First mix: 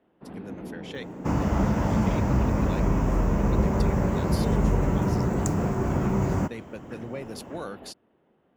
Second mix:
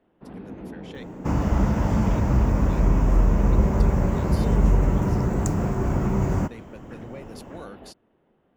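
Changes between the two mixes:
speech -5.0 dB; master: remove HPF 91 Hz 6 dB/oct

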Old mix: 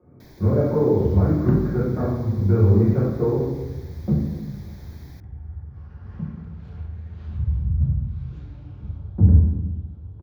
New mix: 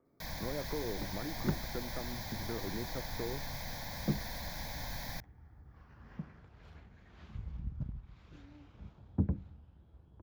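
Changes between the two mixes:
first sound +11.0 dB; reverb: off

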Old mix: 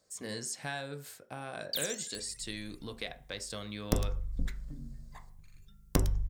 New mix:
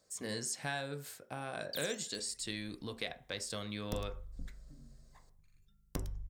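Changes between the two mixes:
first sound -8.0 dB; second sound -11.5 dB

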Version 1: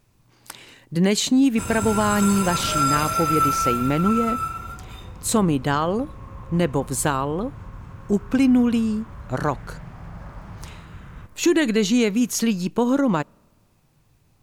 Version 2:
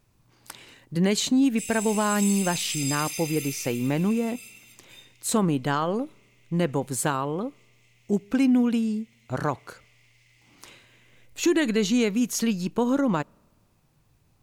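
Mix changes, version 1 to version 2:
speech -3.5 dB; background: add rippled Chebyshev high-pass 2000 Hz, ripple 3 dB

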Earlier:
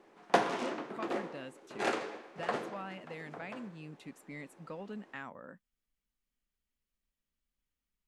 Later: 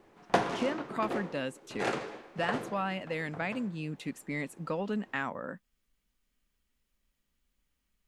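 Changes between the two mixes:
speech +10.5 dB; background: remove HPF 220 Hz 12 dB/oct

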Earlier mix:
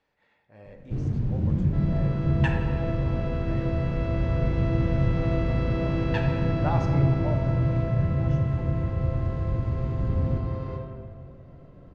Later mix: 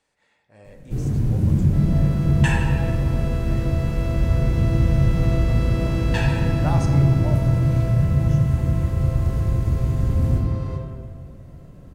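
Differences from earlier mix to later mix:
first sound: send +8.0 dB; master: remove air absorption 210 m

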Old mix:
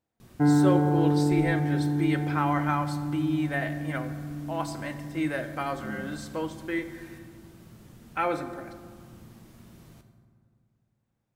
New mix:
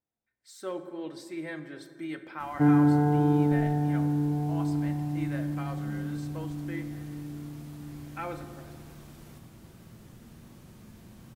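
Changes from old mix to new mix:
speech -9.5 dB; background: entry +2.20 s

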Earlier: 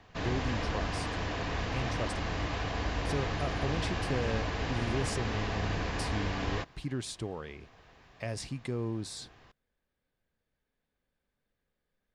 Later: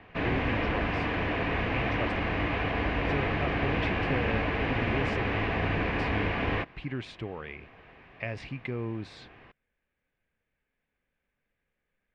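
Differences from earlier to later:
background: add bell 310 Hz +7 dB 2.8 oct; master: add synth low-pass 2400 Hz, resonance Q 2.7

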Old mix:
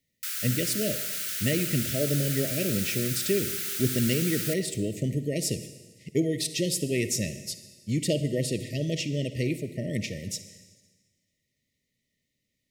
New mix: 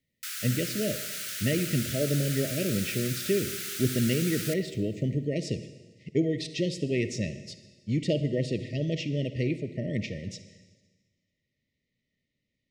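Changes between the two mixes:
speech: add air absorption 130 m; master: add high shelf 10000 Hz -7 dB

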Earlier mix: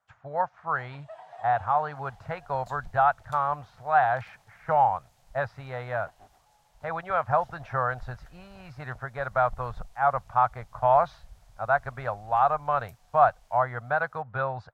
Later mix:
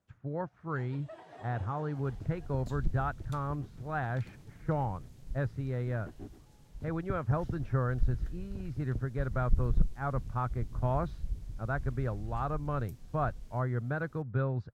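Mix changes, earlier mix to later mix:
speech -9.0 dB; master: add resonant low shelf 490 Hz +14 dB, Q 3

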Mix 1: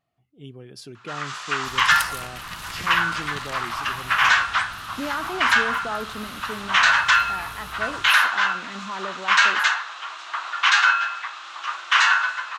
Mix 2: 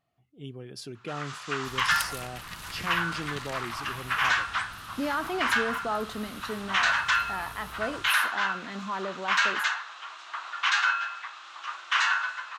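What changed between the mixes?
first sound -7.5 dB; second sound -4.0 dB

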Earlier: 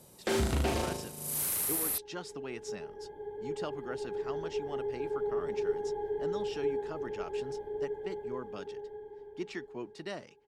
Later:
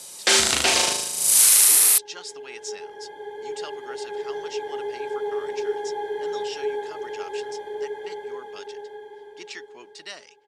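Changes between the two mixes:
first sound +11.0 dB; second sound +12.0 dB; master: add weighting filter ITU-R 468

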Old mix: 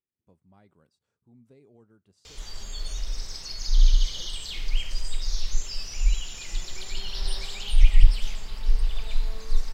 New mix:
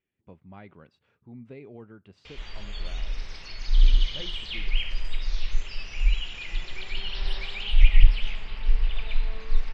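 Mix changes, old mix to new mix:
speech +11.5 dB; master: add synth low-pass 2600 Hz, resonance Q 2.2

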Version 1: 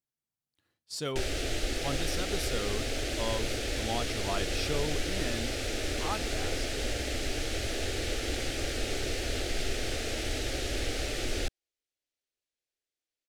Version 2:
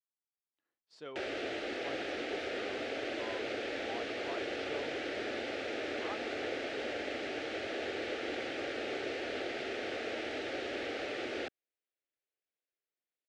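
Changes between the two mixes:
speech -9.5 dB; master: add BPF 310–2400 Hz

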